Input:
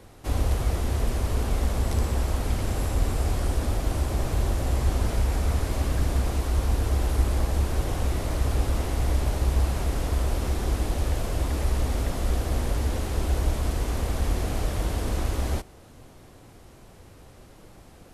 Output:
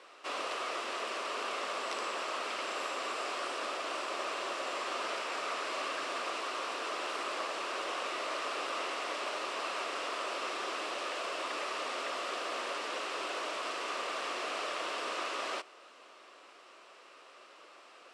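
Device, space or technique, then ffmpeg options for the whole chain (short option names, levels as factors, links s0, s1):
phone speaker on a table: -af "highpass=f=450:w=0.5412,highpass=f=450:w=1.3066,equalizer=f=470:t=q:w=4:g=-5,equalizer=f=800:t=q:w=4:g=-7,equalizer=f=1200:t=q:w=4:g=8,equalizer=f=2700:t=q:w=4:g=7,equalizer=f=6500:t=q:w=4:g=-6,lowpass=f=7200:w=0.5412,lowpass=f=7200:w=1.3066"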